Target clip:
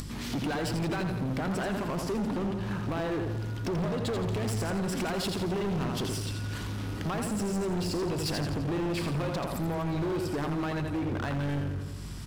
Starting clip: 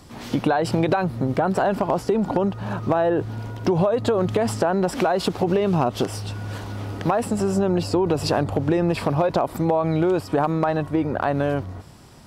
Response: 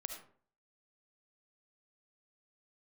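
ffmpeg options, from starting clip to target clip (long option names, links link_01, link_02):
-filter_complex "[0:a]equalizer=frequency=680:width_type=o:width=1.4:gain=-11.5,aecho=1:1:84|168|252|336|420|504:0.501|0.261|0.136|0.0705|0.0366|0.0191,asoftclip=type=hard:threshold=-24.5dB,aeval=exprs='val(0)+0.00562*(sin(2*PI*50*n/s)+sin(2*PI*2*50*n/s)/2+sin(2*PI*3*50*n/s)/3+sin(2*PI*4*50*n/s)/4+sin(2*PI*5*50*n/s)/5)':channel_layout=same,asplit=2[link_01][link_02];[link_02]aeval=exprs='0.0178*(abs(mod(val(0)/0.0178+3,4)-2)-1)':channel_layout=same,volume=-8dB[link_03];[link_01][link_03]amix=inputs=2:normalize=0,acompressor=mode=upward:threshold=-30dB:ratio=2.5,volume=-2.5dB"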